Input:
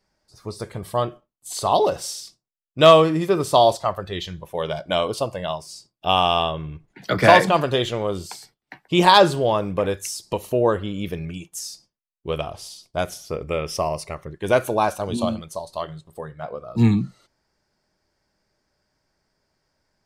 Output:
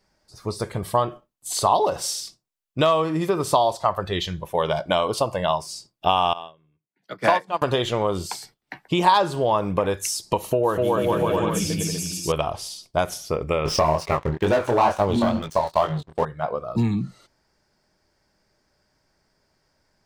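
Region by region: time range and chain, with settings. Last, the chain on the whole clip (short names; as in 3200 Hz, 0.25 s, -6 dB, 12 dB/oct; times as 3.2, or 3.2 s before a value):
6.33–7.62 HPF 160 Hz + upward expander 2.5:1, over -30 dBFS
10.38–12.32 comb 6.2 ms, depth 33% + bouncing-ball echo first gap 0.25 s, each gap 0.75×, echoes 6, each echo -2 dB
13.65–16.25 air absorption 93 m + sample leveller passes 3 + chorus 2.2 Hz, delay 19.5 ms, depth 6.5 ms
whole clip: compressor 6:1, threshold -23 dBFS; dynamic EQ 960 Hz, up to +7 dB, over -42 dBFS, Q 1.9; gain +4 dB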